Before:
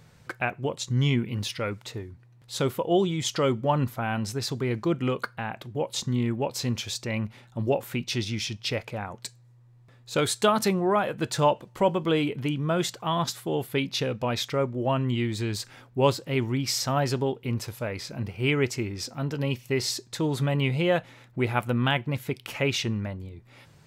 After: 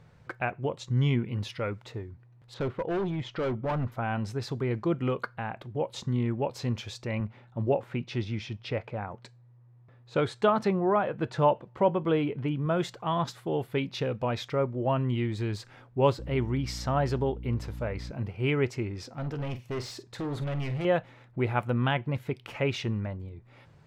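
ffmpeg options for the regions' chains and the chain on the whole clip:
ffmpeg -i in.wav -filter_complex "[0:a]asettb=1/sr,asplit=3[link_01][link_02][link_03];[link_01]atrim=end=2.544[link_04];[link_02]atrim=start=2.54:end=3.92,asetpts=PTS-STARTPTS,afade=type=in:duration=0.004:curve=qsin,afade=type=out:start_time=1.376:duration=0.004:curve=qsin,lowpass=2900,asoftclip=type=hard:threshold=-24.5dB[link_05];[link_03]atrim=start=3.916[link_06];[link_04][link_05]acrossfade=duration=0.004:curve1=hsin:curve2=qsin[link_07];[link_07][link_06]acrossfade=duration=0.004:curve1=qsin:curve2=hsin,asettb=1/sr,asplit=3[link_08][link_09][link_10];[link_08]atrim=end=7.204[link_11];[link_09]atrim=start=7.2:end=12.66,asetpts=PTS-STARTPTS,afade=type=in:duration=0.004:curve=qsin,afade=type=out:start_time=5.456:duration=0.004:curve=qsin,highpass=60,aemphasis=mode=reproduction:type=50fm[link_12];[link_10]atrim=start=12.656[link_13];[link_11][link_12]acrossfade=duration=0.004:curve1=hsin:curve2=qsin[link_14];[link_14][link_13]acrossfade=duration=0.004:curve1=qsin:curve2=hsin,asettb=1/sr,asplit=3[link_15][link_16][link_17];[link_15]atrim=end=16.194[link_18];[link_16]atrim=start=16.19:end=18.11,asetpts=PTS-STARTPTS,afade=type=in:duration=0.004:curve=qsin,afade=type=out:start_time=1.916:duration=0.004:curve=qsin,bandreject=frequency=2500:width=24,aeval=exprs='val(0)+0.0141*(sin(2*PI*60*n/s)+sin(2*PI*2*60*n/s)/2+sin(2*PI*3*60*n/s)/3+sin(2*PI*4*60*n/s)/4+sin(2*PI*5*60*n/s)/5)':channel_layout=same[link_19];[link_17]atrim=start=18.106[link_20];[link_18][link_19]acrossfade=duration=0.004:curve1=hsin:curve2=qsin[link_21];[link_21][link_20]acrossfade=duration=0.004:curve1=qsin:curve2=hsin,asettb=1/sr,asplit=3[link_22][link_23][link_24];[link_22]atrim=end=19.164[link_25];[link_23]atrim=start=19.16:end=20.85,asetpts=PTS-STARTPTS,afade=type=in:duration=0.004:curve=qsin,afade=type=out:start_time=1.686:duration=0.004:curve=qsin,asoftclip=type=hard:threshold=-28dB,asplit=2[link_26][link_27];[link_27]adelay=48,volume=-13dB[link_28];[link_26][link_28]amix=inputs=2:normalize=0,atrim=end_sample=74529[link_29];[link_24]atrim=start=20.846[link_30];[link_25][link_29]acrossfade=duration=0.004:curve1=hsin:curve2=qsin[link_31];[link_31][link_30]acrossfade=duration=0.004:curve1=qsin:curve2=hsin,lowpass=frequency=1500:poles=1,equalizer=frequency=240:width_type=o:width=1.3:gain=-3" out.wav

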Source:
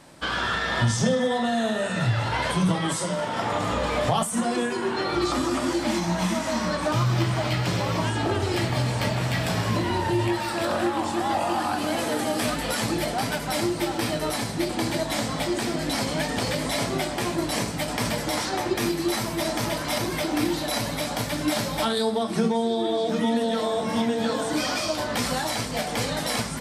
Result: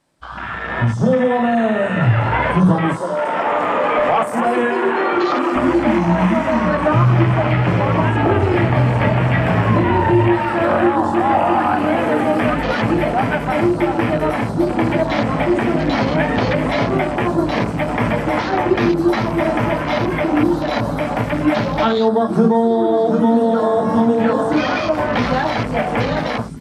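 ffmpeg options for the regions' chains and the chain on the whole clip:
ffmpeg -i in.wav -filter_complex "[0:a]asettb=1/sr,asplit=3[link_01][link_02][link_03];[link_01]atrim=end=3.014[link_04];[link_02]atrim=start=3.01:end=5.56,asetpts=PTS-STARTPTS,afade=type=in:duration=0.004:curve=qsin,afade=type=out:start_time=2.546:duration=0.004:curve=qsin,highpass=340,asoftclip=type=hard:threshold=-22dB,aecho=1:1:241:0.355,atrim=end_sample=112455[link_05];[link_03]atrim=start=5.556[link_06];[link_04][link_05]acrossfade=duration=0.004:curve1=hsin:curve2=qsin[link_07];[link_07][link_06]acrossfade=duration=0.004:curve1=qsin:curve2=hsin,dynaudnorm=framelen=570:gausssize=3:maxgain=12dB,afwtdn=0.0708,acrossover=split=2900[link_08][link_09];[link_09]acompressor=threshold=-40dB:ratio=4:attack=1:release=60[link_10];[link_08][link_10]amix=inputs=2:normalize=0" out.wav

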